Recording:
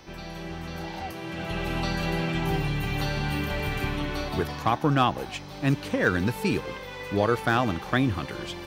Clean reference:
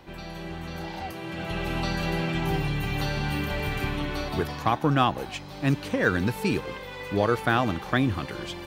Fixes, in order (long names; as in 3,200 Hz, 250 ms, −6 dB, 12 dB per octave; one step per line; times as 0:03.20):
clipped peaks rebuilt −10.5 dBFS
hum removal 437 Hz, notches 14